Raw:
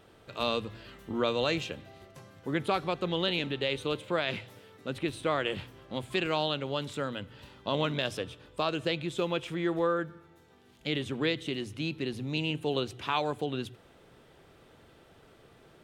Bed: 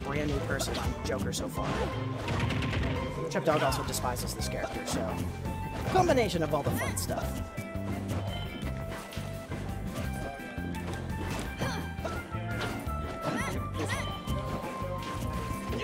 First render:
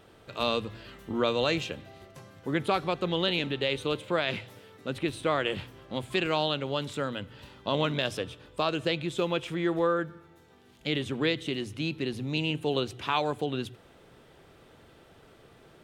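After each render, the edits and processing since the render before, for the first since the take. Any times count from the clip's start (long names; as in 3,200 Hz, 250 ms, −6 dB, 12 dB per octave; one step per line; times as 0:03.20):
level +2 dB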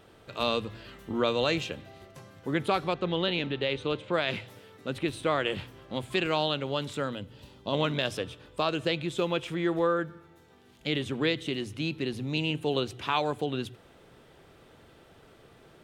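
0:02.94–0:04.14: high-frequency loss of the air 100 metres
0:07.15–0:07.73: parametric band 1,600 Hz −9 dB 1.6 octaves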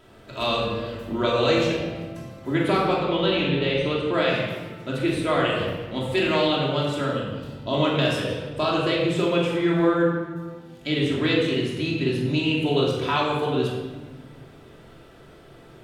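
flutter between parallel walls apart 7.2 metres, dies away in 0.21 s
rectangular room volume 1,100 cubic metres, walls mixed, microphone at 2.9 metres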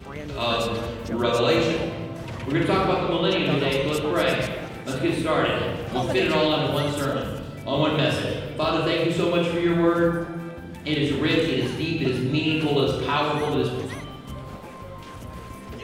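mix in bed −4 dB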